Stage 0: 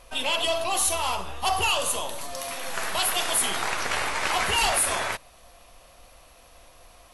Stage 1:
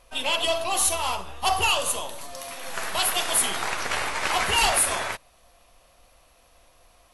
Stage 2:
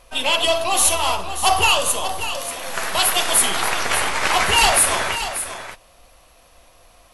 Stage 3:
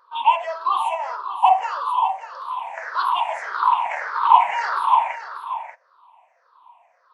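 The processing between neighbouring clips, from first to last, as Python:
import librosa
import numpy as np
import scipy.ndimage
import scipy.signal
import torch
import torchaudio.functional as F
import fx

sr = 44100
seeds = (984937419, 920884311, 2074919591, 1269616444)

y1 = fx.upward_expand(x, sr, threshold_db=-37.0, expansion=1.5)
y1 = y1 * librosa.db_to_amplitude(2.5)
y2 = y1 + 10.0 ** (-10.5 / 20.0) * np.pad(y1, (int(588 * sr / 1000.0), 0))[:len(y1)]
y2 = y2 * librosa.db_to_amplitude(6.0)
y3 = fx.spec_ripple(y2, sr, per_octave=0.58, drift_hz=-1.7, depth_db=23)
y3 = fx.ladder_bandpass(y3, sr, hz=1000.0, resonance_pct=80)
y3 = fx.wow_flutter(y3, sr, seeds[0], rate_hz=2.1, depth_cents=23.0)
y3 = y3 * librosa.db_to_amplitude(1.5)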